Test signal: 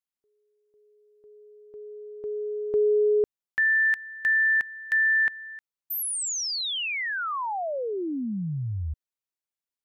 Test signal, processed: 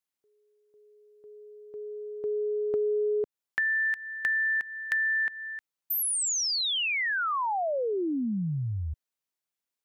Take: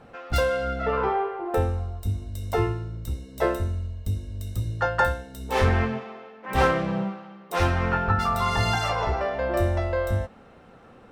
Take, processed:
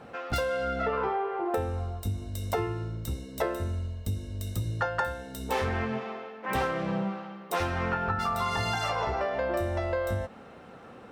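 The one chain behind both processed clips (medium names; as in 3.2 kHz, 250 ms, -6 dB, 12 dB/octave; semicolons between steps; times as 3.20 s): high-pass 120 Hz 6 dB/octave; compression 6:1, threshold -29 dBFS; trim +3 dB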